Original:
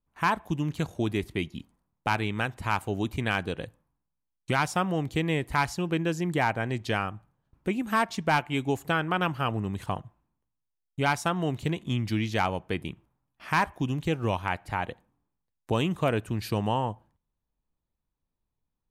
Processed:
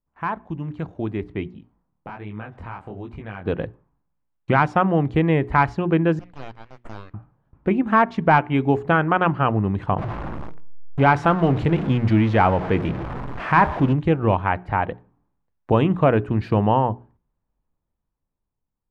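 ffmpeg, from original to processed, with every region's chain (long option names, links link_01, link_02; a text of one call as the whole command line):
ffmpeg -i in.wav -filter_complex "[0:a]asettb=1/sr,asplit=3[link_01][link_02][link_03];[link_01]atrim=end=1.534[link_04];[link_02]atrim=start=1.53:end=3.46,asetpts=PTS-STARTPTS,afade=type=in:duration=0.004:curve=qsin,afade=type=out:start_time=1.926:duration=0.004:curve=qsin,acompressor=threshold=-39dB:ratio=3:attack=3.2:release=140:knee=1:detection=peak,flanger=delay=18.5:depth=7.6:speed=1.2[link_05];[link_03]atrim=start=3.456[link_06];[link_04][link_05]acrossfade=duration=0.004:curve1=hsin:curve2=qsin[link_07];[link_07][link_06]acrossfade=duration=0.004:curve1=qsin:curve2=hsin,asettb=1/sr,asplit=3[link_08][link_09][link_10];[link_08]atrim=end=6.194[link_11];[link_09]atrim=start=6.19:end=7.14,asetpts=PTS-STARTPTS,afade=type=in:duration=0.004:curve=qsin,afade=type=out:start_time=0.946:duration=0.004:curve=qsin,bandpass=frequency=4300:width_type=q:width=2.2,aeval=exprs='abs(val(0))':channel_layout=same[link_12];[link_10]atrim=start=7.136[link_13];[link_11][link_12]acrossfade=duration=0.004:curve1=hsin:curve2=qsin[link_14];[link_14][link_13]acrossfade=duration=0.004:curve1=qsin:curve2=hsin,asettb=1/sr,asplit=3[link_15][link_16][link_17];[link_15]atrim=end=9.984[link_18];[link_16]atrim=start=9.98:end=13.93,asetpts=PTS-STARTPTS,afade=type=in:duration=0.004:curve=qsin,afade=type=out:start_time=3.946:duration=0.004:curve=qsin,aeval=exprs='val(0)+0.5*0.0266*sgn(val(0))':channel_layout=same,bandreject=frequency=153.2:width_type=h:width=4,bandreject=frequency=306.4:width_type=h:width=4,bandreject=frequency=459.6:width_type=h:width=4,bandreject=frequency=612.8:width_type=h:width=4,bandreject=frequency=766:width_type=h:width=4,bandreject=frequency=919.2:width_type=h:width=4,bandreject=frequency=1072.4:width_type=h:width=4,bandreject=frequency=1225.6:width_type=h:width=4,bandreject=frequency=1378.8:width_type=h:width=4,bandreject=frequency=1532:width_type=h:width=4[link_19];[link_17]atrim=start=13.926[link_20];[link_18][link_19]acrossfade=duration=0.004:curve1=hsin:curve2=qsin[link_21];[link_21][link_20]acrossfade=duration=0.004:curve1=qsin:curve2=hsin,lowpass=1600,bandreject=frequency=60:width_type=h:width=6,bandreject=frequency=120:width_type=h:width=6,bandreject=frequency=180:width_type=h:width=6,bandreject=frequency=240:width_type=h:width=6,bandreject=frequency=300:width_type=h:width=6,bandreject=frequency=360:width_type=h:width=6,bandreject=frequency=420:width_type=h:width=6,dynaudnorm=framelen=320:gausssize=11:maxgain=10dB" out.wav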